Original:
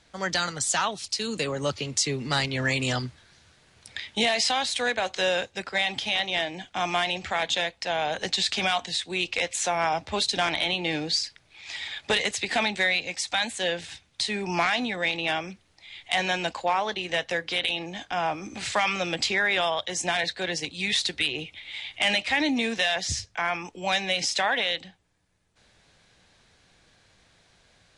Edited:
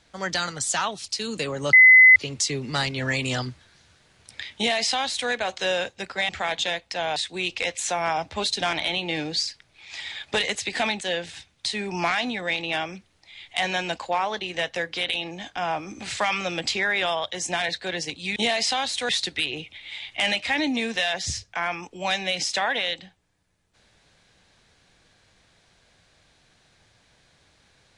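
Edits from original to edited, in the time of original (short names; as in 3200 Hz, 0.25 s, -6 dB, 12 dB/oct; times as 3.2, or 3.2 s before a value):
1.73 add tone 2030 Hz -8 dBFS 0.43 s
4.14–4.87 copy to 20.91
5.86–7.2 cut
8.07–8.92 cut
12.77–13.56 cut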